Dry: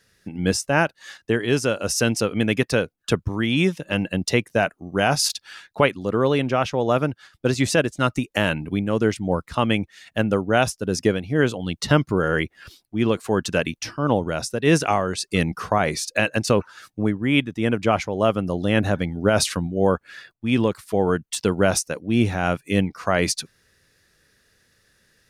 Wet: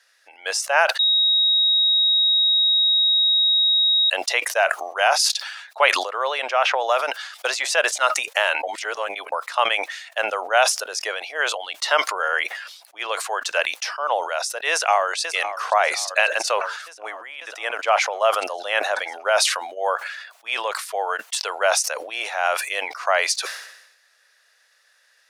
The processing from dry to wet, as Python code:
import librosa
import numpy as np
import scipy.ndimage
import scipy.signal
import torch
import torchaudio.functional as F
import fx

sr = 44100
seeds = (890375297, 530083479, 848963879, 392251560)

y = fx.band_squash(x, sr, depth_pct=100, at=(6.65, 7.65))
y = fx.echo_throw(y, sr, start_s=14.7, length_s=0.49, ms=540, feedback_pct=70, wet_db=-17.5)
y = fx.over_compress(y, sr, threshold_db=-28.0, ratio=-1.0, at=(17.13, 17.6))
y = fx.edit(y, sr, fx.bleep(start_s=0.99, length_s=3.11, hz=3790.0, db=-17.5),
    fx.reverse_span(start_s=8.63, length_s=0.69), tone=tone)
y = scipy.signal.sosfilt(scipy.signal.butter(6, 610.0, 'highpass', fs=sr, output='sos'), y)
y = fx.high_shelf(y, sr, hz=11000.0, db=-9.5)
y = fx.sustainer(y, sr, db_per_s=63.0)
y = F.gain(torch.from_numpy(y), 3.5).numpy()